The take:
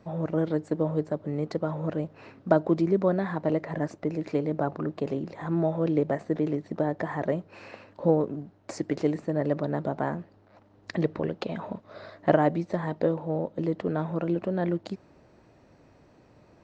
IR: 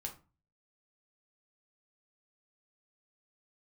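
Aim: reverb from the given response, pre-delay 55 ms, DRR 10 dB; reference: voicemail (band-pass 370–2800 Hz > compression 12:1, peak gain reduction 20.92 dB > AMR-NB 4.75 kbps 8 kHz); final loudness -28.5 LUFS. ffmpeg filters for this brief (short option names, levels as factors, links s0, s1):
-filter_complex "[0:a]asplit=2[s0][s1];[1:a]atrim=start_sample=2205,adelay=55[s2];[s1][s2]afir=irnorm=-1:irlink=0,volume=0.398[s3];[s0][s3]amix=inputs=2:normalize=0,highpass=370,lowpass=2800,acompressor=threshold=0.0141:ratio=12,volume=6.31" -ar 8000 -c:a libopencore_amrnb -b:a 4750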